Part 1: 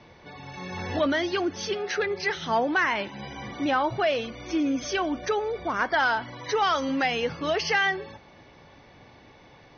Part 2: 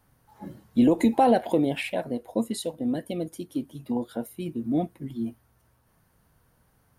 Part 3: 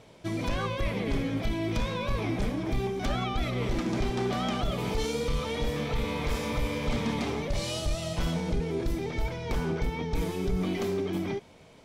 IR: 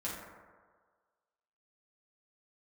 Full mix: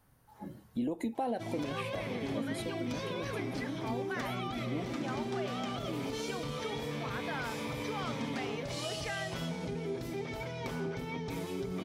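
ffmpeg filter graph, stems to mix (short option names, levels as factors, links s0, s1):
-filter_complex "[0:a]adelay=1350,volume=0.422[s0];[1:a]volume=0.75[s1];[2:a]highpass=120,aecho=1:1:7.5:0.41,adelay=1150,volume=1.26[s2];[s0][s1][s2]amix=inputs=3:normalize=0,acompressor=threshold=0.00891:ratio=2"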